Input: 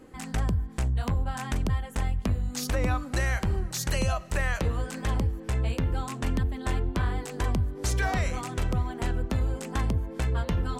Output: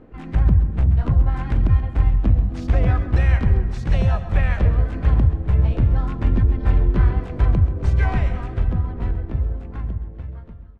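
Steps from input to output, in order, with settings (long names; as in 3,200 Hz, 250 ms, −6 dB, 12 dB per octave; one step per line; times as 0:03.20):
fade-out on the ending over 3.08 s
low-pass filter 2,800 Hz 12 dB per octave
low-shelf EQ 150 Hz +10.5 dB
pitch-shifted copies added +4 semitones −15 dB, +5 semitones −7 dB
repeating echo 133 ms, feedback 53%, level −13.5 dB
on a send at −14 dB: convolution reverb RT60 0.75 s, pre-delay 85 ms
on the sum: one half of a high-frequency compander decoder only
level +1 dB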